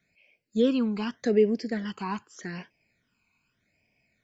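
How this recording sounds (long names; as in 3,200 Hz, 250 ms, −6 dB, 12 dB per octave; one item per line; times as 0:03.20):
phaser sweep stages 12, 0.83 Hz, lowest notch 570–1,300 Hz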